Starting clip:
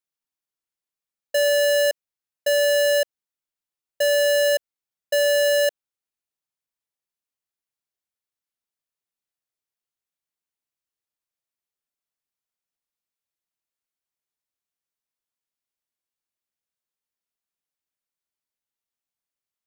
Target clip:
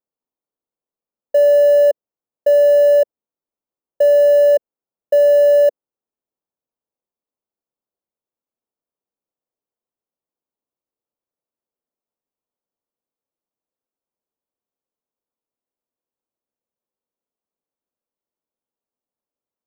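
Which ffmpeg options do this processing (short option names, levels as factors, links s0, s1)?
-af "equalizer=f=250:t=o:w=1:g=7,equalizer=f=500:t=o:w=1:g=9,equalizer=f=1000:t=o:w=1:g=4,equalizer=f=2000:t=o:w=1:g=-10,equalizer=f=4000:t=o:w=1:g=-12,equalizer=f=8000:t=o:w=1:g=-9,equalizer=f=16000:t=o:w=1:g=-7"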